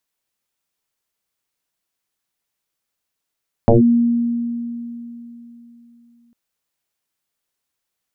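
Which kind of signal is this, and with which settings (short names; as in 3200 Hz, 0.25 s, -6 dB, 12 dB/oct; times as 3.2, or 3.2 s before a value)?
FM tone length 2.65 s, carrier 236 Hz, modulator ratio 0.48, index 4.7, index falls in 0.14 s linear, decay 3.45 s, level -6.5 dB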